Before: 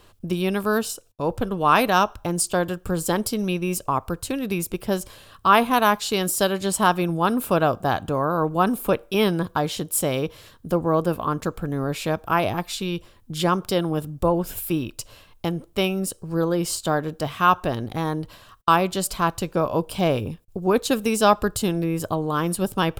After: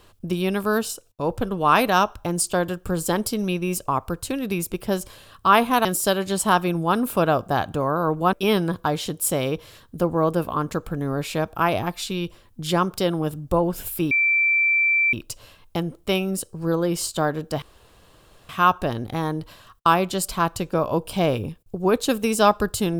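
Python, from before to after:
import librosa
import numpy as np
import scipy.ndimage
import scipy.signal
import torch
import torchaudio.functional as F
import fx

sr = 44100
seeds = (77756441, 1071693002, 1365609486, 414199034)

y = fx.edit(x, sr, fx.cut(start_s=5.85, length_s=0.34),
    fx.cut(start_s=8.67, length_s=0.37),
    fx.insert_tone(at_s=14.82, length_s=1.02, hz=2340.0, db=-16.0),
    fx.insert_room_tone(at_s=17.31, length_s=0.87), tone=tone)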